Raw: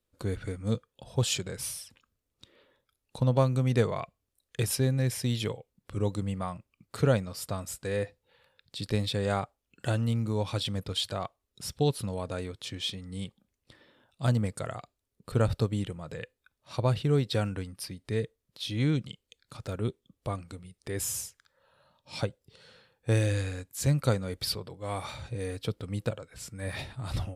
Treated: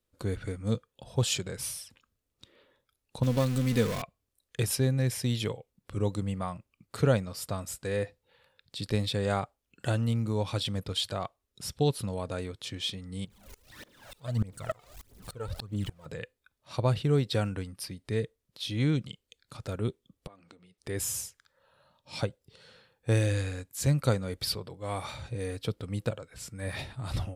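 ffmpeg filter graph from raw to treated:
ffmpeg -i in.wav -filter_complex "[0:a]asettb=1/sr,asplit=3[link_01][link_02][link_03];[link_01]atrim=end=3.234[link_04];[link_02]atrim=start=3.23:end=4.02,asetpts=PTS-STARTPTS,afade=type=in:duration=0.004:curve=qsin,afade=type=out:start_time=0.786:duration=0.004:curve=qsin,aeval=exprs='val(0)+0.5*0.0398*sgn(val(0))':channel_layout=same,equalizer=frequency=800:width=0.76:gain=-9,aecho=1:1:4:0.42,atrim=end_sample=34839[link_05];[link_03]atrim=start=4.016[link_06];[link_04][link_05]acrossfade=duration=0.004:curve1=hsin:curve2=qsin[link_07];[link_07][link_06]acrossfade=duration=0.004:curve1=qsin:curve2=hsin,asettb=1/sr,asplit=3[link_08][link_09][link_10];[link_08]atrim=end=13.254[link_11];[link_09]atrim=start=13.25:end=16.06,asetpts=PTS-STARTPTS,afade=type=in:duration=0.004:curve=qsin,afade=type=out:start_time=2.806:duration=0.004:curve=qsin,aeval=exprs='val(0)+0.5*0.00841*sgn(val(0))':channel_layout=same,aphaser=in_gain=1:out_gain=1:delay=2.4:decay=0.66:speed=1.6:type=triangular,aeval=exprs='val(0)*pow(10,-25*if(lt(mod(-3.4*n/s,1),2*abs(-3.4)/1000),1-mod(-3.4*n/s,1)/(2*abs(-3.4)/1000),(mod(-3.4*n/s,1)-2*abs(-3.4)/1000)/(1-2*abs(-3.4)/1000))/20)':channel_layout=same[link_12];[link_10]atrim=start=16.056[link_13];[link_11][link_12]acrossfade=duration=0.004:curve1=hsin:curve2=qsin[link_14];[link_14][link_13]acrossfade=duration=0.004:curve1=qsin:curve2=hsin,asettb=1/sr,asplit=3[link_15][link_16][link_17];[link_15]atrim=end=20.274[link_18];[link_16]atrim=start=20.27:end=20.78,asetpts=PTS-STARTPTS,afade=type=in:duration=0.004:curve=qsin,afade=type=out:start_time=0.506:duration=0.004:curve=qsin,acompressor=threshold=-46dB:ratio=12:attack=3.2:release=140:knee=1:detection=peak,highpass=240,lowpass=5100[link_19];[link_17]atrim=start=20.776[link_20];[link_18][link_19]acrossfade=duration=0.004:curve1=hsin:curve2=qsin[link_21];[link_21][link_20]acrossfade=duration=0.004:curve1=qsin:curve2=hsin" out.wav

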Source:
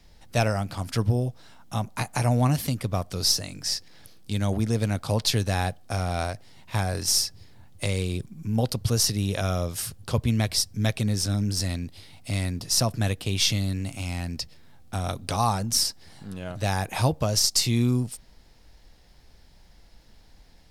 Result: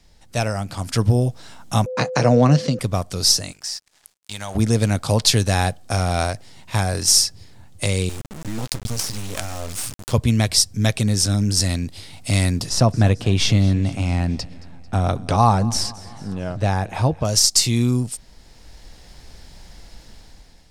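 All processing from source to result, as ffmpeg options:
ffmpeg -i in.wav -filter_complex "[0:a]asettb=1/sr,asplit=3[link_01][link_02][link_03];[link_01]atrim=end=1.864[link_04];[link_02]atrim=start=1.86:end=2.79,asetpts=PTS-STARTPTS,afade=type=in:duration=0.004:curve=qsin,afade=type=out:start_time=0.926:duration=0.004:curve=qsin,agate=range=-21dB:threshold=-41dB:ratio=16:release=100:detection=peak,aeval=exprs='val(0)+0.00794*sin(2*PI*510*n/s)':channel_layout=same,highpass=frequency=140:width=0.5412,highpass=frequency=140:width=1.3066,equalizer=frequency=150:width_type=q:width=4:gain=4,equalizer=frequency=490:width_type=q:width=4:gain=8,equalizer=frequency=850:width_type=q:width=4:gain=-6,equalizer=frequency=2300:width_type=q:width=4:gain=-5,equalizer=frequency=3400:width_type=q:width=4:gain=-4,lowpass=frequency=5500:width=0.5412,lowpass=frequency=5500:width=1.3066[link_05];[link_03]atrim=start=2.786[link_06];[link_04][link_05]acrossfade=duration=0.004:curve1=hsin:curve2=qsin[link_07];[link_07][link_06]acrossfade=duration=0.004:curve1=qsin:curve2=hsin,asettb=1/sr,asplit=3[link_08][link_09][link_10];[link_08]atrim=end=3.524[link_11];[link_09]atrim=start=3.52:end=4.55,asetpts=PTS-STARTPTS,afade=type=in:duration=0.004:curve=qsin,afade=type=out:start_time=1.026:duration=0.004:curve=qsin,lowshelf=frequency=530:width_type=q:width=1.5:gain=-12,acompressor=threshold=-33dB:ratio=2.5:attack=3.2:release=140:knee=1:detection=peak,aeval=exprs='sgn(val(0))*max(abs(val(0))-0.00251,0)':channel_layout=same[link_12];[link_10]atrim=start=4.546[link_13];[link_11][link_12]acrossfade=duration=0.004:curve1=hsin:curve2=qsin[link_14];[link_14][link_13]acrossfade=duration=0.004:curve1=qsin:curve2=hsin,asettb=1/sr,asplit=3[link_15][link_16][link_17];[link_15]atrim=end=8.094[link_18];[link_16]atrim=start=8.09:end=10.13,asetpts=PTS-STARTPTS,afade=type=in:duration=0.004:curve=qsin,afade=type=out:start_time=2.036:duration=0.004:curve=qsin,acompressor=threshold=-25dB:ratio=4:attack=3.2:release=140:knee=1:detection=peak,acrusher=bits=4:dc=4:mix=0:aa=0.000001[link_19];[link_17]atrim=start=10.126[link_20];[link_18][link_19]acrossfade=duration=0.004:curve1=hsin:curve2=qsin[link_21];[link_21][link_20]acrossfade=duration=0.004:curve1=qsin:curve2=hsin,asettb=1/sr,asplit=3[link_22][link_23][link_24];[link_22]atrim=end=12.694[link_25];[link_23]atrim=start=12.69:end=17.25,asetpts=PTS-STARTPTS,afade=type=in:duration=0.004:curve=qsin,afade=type=out:start_time=4.556:duration=0.004:curve=qsin,lowpass=frequency=1300:poles=1,aecho=1:1:222|444|666|888:0.0944|0.0538|0.0307|0.0175,atrim=end_sample=201096[link_26];[link_24]atrim=start=17.246[link_27];[link_25][link_26]acrossfade=duration=0.004:curve1=hsin:curve2=qsin[link_28];[link_28][link_27]acrossfade=duration=0.004:curve1=qsin:curve2=hsin,equalizer=frequency=7900:width=1.1:gain=6.5,dynaudnorm=framelen=230:gausssize=7:maxgain=11.5dB,highshelf=frequency=11000:gain=-5.5" out.wav

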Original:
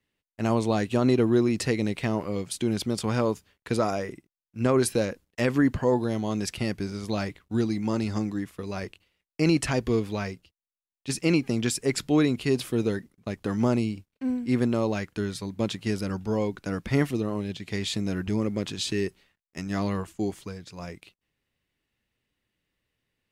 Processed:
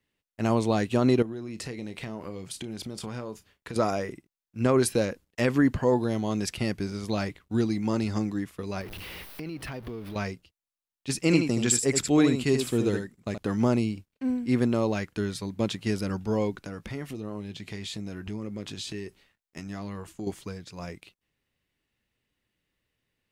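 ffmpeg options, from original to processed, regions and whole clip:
ffmpeg -i in.wav -filter_complex "[0:a]asettb=1/sr,asplit=3[link_01][link_02][link_03];[link_01]atrim=end=1.224[link_04];[link_02]atrim=start=1.22:end=3.76,asetpts=PTS-STARTPTS,afade=type=in:duration=0.004:curve=qsin,afade=type=out:start_time=2.536:duration=0.004:curve=qsin,acompressor=threshold=-33dB:ratio=6:attack=3.2:release=140:knee=1:detection=peak,asplit=2[link_05][link_06];[link_06]adelay=32,volume=-13dB[link_07];[link_05][link_07]amix=inputs=2:normalize=0,atrim=end_sample=112014[link_08];[link_03]atrim=start=3.756[link_09];[link_04][link_08]acrossfade=duration=0.004:curve1=hsin:curve2=qsin[link_10];[link_10][link_09]acrossfade=duration=0.004:curve1=qsin:curve2=hsin,asettb=1/sr,asplit=3[link_11][link_12][link_13];[link_11]atrim=end=8.814[link_14];[link_12]atrim=start=8.81:end=10.16,asetpts=PTS-STARTPTS,afade=type=in:duration=0.004:curve=qsin,afade=type=out:start_time=1.346:duration=0.004:curve=qsin,aeval=exprs='val(0)+0.5*0.0211*sgn(val(0))':channel_layout=same,equalizer=frequency=7200:width=1.9:gain=-15,acompressor=threshold=-35dB:ratio=5:attack=3.2:release=140:knee=1:detection=peak[link_15];[link_13]atrim=start=10.156[link_16];[link_14][link_15]acrossfade=duration=0.004:curve1=hsin:curve2=qsin[link_17];[link_17][link_16]acrossfade=duration=0.004:curve1=qsin:curve2=hsin,asettb=1/sr,asplit=3[link_18][link_19][link_20];[link_18]atrim=end=11.234[link_21];[link_19]atrim=start=11.23:end=13.38,asetpts=PTS-STARTPTS,afade=type=in:duration=0.004:curve=qsin,afade=type=out:start_time=2.146:duration=0.004:curve=qsin,equalizer=frequency=7600:width=5.3:gain=10.5,aecho=1:1:76:0.473,atrim=end_sample=94815[link_22];[link_20]atrim=start=13.376[link_23];[link_21][link_22]acrossfade=duration=0.004:curve1=hsin:curve2=qsin[link_24];[link_24][link_23]acrossfade=duration=0.004:curve1=qsin:curve2=hsin,asettb=1/sr,asplit=3[link_25][link_26][link_27];[link_25]atrim=end=16.624[link_28];[link_26]atrim=start=16.62:end=20.27,asetpts=PTS-STARTPTS,afade=type=in:duration=0.004:curve=qsin,afade=type=out:start_time=3.646:duration=0.004:curve=qsin,acompressor=threshold=-35dB:ratio=3:attack=3.2:release=140:knee=1:detection=peak,asplit=2[link_29][link_30];[link_30]adelay=19,volume=-13dB[link_31];[link_29][link_31]amix=inputs=2:normalize=0,atrim=end_sample=160965[link_32];[link_27]atrim=start=20.266[link_33];[link_28][link_32]acrossfade=duration=0.004:curve1=hsin:curve2=qsin[link_34];[link_34][link_33]acrossfade=duration=0.004:curve1=qsin:curve2=hsin" out.wav

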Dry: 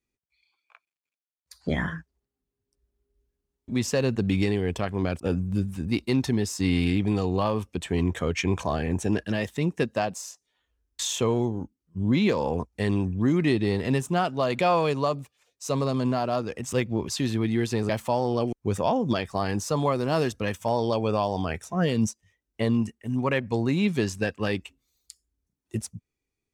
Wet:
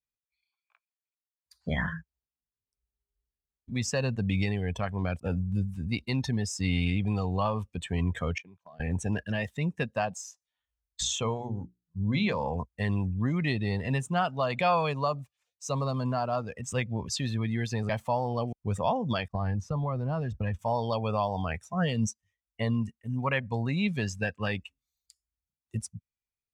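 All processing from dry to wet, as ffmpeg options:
ffmpeg -i in.wav -filter_complex "[0:a]asettb=1/sr,asplit=3[link_01][link_02][link_03];[link_01]atrim=end=8.384[link_04];[link_02]atrim=start=8.38:end=8.8,asetpts=PTS-STARTPTS,afade=type=in:duration=0.004:curve=qsin,afade=type=out:start_time=0.416:duration=0.004:curve=qsin,agate=range=-28dB:threshold=-29dB:ratio=16:release=100:detection=peak,highpass=150,lowpass=6200,acompressor=threshold=-44dB:ratio=4:attack=3.2:release=140:knee=1:detection=peak[link_05];[link_03]atrim=start=8.796[link_06];[link_04][link_05]acrossfade=duration=0.004:curve1=hsin:curve2=qsin[link_07];[link_07][link_06]acrossfade=duration=0.004:curve1=qsin:curve2=hsin,asettb=1/sr,asplit=3[link_08][link_09][link_10];[link_08]atrim=end=11.014[link_11];[link_09]atrim=start=11.01:end=12.57,asetpts=PTS-STARTPTS,afade=type=in:duration=0.004:curve=qsin,afade=type=out:start_time=1.556:duration=0.004:curve=qsin,lowpass=9700,aeval=exprs='val(0)+0.0158*(sin(2*PI*60*n/s)+sin(2*PI*2*60*n/s)/2+sin(2*PI*3*60*n/s)/3+sin(2*PI*4*60*n/s)/4+sin(2*PI*5*60*n/s)/5)':channel_layout=same,bandreject=frequency=60:width_type=h:width=6,bandreject=frequency=120:width_type=h:width=6,bandreject=frequency=180:width_type=h:width=6,bandreject=frequency=240:width_type=h:width=6,bandreject=frequency=300:width_type=h:width=6,bandreject=frequency=360:width_type=h:width=6,bandreject=frequency=420:width_type=h:width=6[link_12];[link_10]atrim=start=12.566[link_13];[link_11][link_12]acrossfade=duration=0.004:curve1=hsin:curve2=qsin[link_14];[link_14][link_13]acrossfade=duration=0.004:curve1=qsin:curve2=hsin,asettb=1/sr,asplit=3[link_15][link_16][link_17];[link_15]atrim=end=19.284[link_18];[link_16]atrim=start=19.28:end=20.59,asetpts=PTS-STARTPTS,afade=type=in:duration=0.004:curve=qsin,afade=type=out:start_time=1.306:duration=0.004:curve=qsin,aemphasis=mode=reproduction:type=bsi,agate=range=-33dB:threshold=-37dB:ratio=3:release=100:detection=peak,acompressor=threshold=-23dB:ratio=6:attack=3.2:release=140:knee=1:detection=peak[link_19];[link_17]atrim=start=20.586[link_20];[link_18][link_19]acrossfade=duration=0.004:curve1=hsin:curve2=qsin[link_21];[link_21][link_20]acrossfade=duration=0.004:curve1=qsin:curve2=hsin,afftdn=noise_reduction=13:noise_floor=-37,equalizer=frequency=340:width=1.5:gain=-13.5" out.wav

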